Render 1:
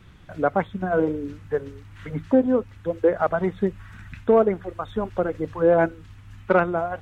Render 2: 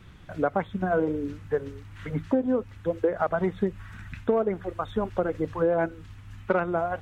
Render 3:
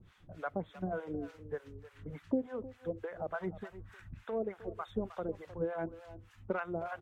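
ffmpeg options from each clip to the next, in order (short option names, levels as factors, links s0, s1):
-af "acompressor=threshold=0.1:ratio=6"
-filter_complex "[0:a]asplit=2[s0][s1];[s1]adelay=310,highpass=300,lowpass=3400,asoftclip=type=hard:threshold=0.1,volume=0.224[s2];[s0][s2]amix=inputs=2:normalize=0,acrossover=split=670[s3][s4];[s3]aeval=exprs='val(0)*(1-1/2+1/2*cos(2*PI*3.4*n/s))':c=same[s5];[s4]aeval=exprs='val(0)*(1-1/2-1/2*cos(2*PI*3.4*n/s))':c=same[s6];[s5][s6]amix=inputs=2:normalize=0,volume=0.473"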